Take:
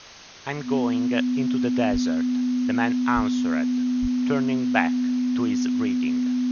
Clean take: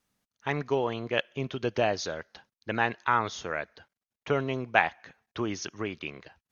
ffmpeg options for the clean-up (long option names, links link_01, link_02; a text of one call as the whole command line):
ffmpeg -i in.wav -filter_complex "[0:a]bandreject=frequency=250:width=30,asplit=3[link_01][link_02][link_03];[link_01]afade=type=out:start_time=1.92:duration=0.02[link_04];[link_02]highpass=frequency=140:width=0.5412,highpass=frequency=140:width=1.3066,afade=type=in:start_time=1.92:duration=0.02,afade=type=out:start_time=2.04:duration=0.02[link_05];[link_03]afade=type=in:start_time=2.04:duration=0.02[link_06];[link_04][link_05][link_06]amix=inputs=3:normalize=0,asplit=3[link_07][link_08][link_09];[link_07]afade=type=out:start_time=3.15:duration=0.02[link_10];[link_08]highpass=frequency=140:width=0.5412,highpass=frequency=140:width=1.3066,afade=type=in:start_time=3.15:duration=0.02,afade=type=out:start_time=3.27:duration=0.02[link_11];[link_09]afade=type=in:start_time=3.27:duration=0.02[link_12];[link_10][link_11][link_12]amix=inputs=3:normalize=0,asplit=3[link_13][link_14][link_15];[link_13]afade=type=out:start_time=4.01:duration=0.02[link_16];[link_14]highpass=frequency=140:width=0.5412,highpass=frequency=140:width=1.3066,afade=type=in:start_time=4.01:duration=0.02,afade=type=out:start_time=4.13:duration=0.02[link_17];[link_15]afade=type=in:start_time=4.13:duration=0.02[link_18];[link_16][link_17][link_18]amix=inputs=3:normalize=0,afwtdn=0.0089" out.wav